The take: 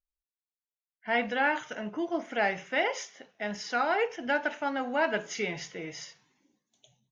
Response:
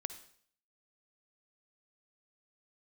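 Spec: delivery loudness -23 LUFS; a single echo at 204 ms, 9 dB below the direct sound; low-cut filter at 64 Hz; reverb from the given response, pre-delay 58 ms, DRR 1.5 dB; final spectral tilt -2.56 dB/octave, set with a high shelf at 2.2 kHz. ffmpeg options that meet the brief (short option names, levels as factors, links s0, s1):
-filter_complex "[0:a]highpass=64,highshelf=f=2200:g=4.5,aecho=1:1:204:0.355,asplit=2[s0][s1];[1:a]atrim=start_sample=2205,adelay=58[s2];[s1][s2]afir=irnorm=-1:irlink=0,volume=1[s3];[s0][s3]amix=inputs=2:normalize=0,volume=1.58"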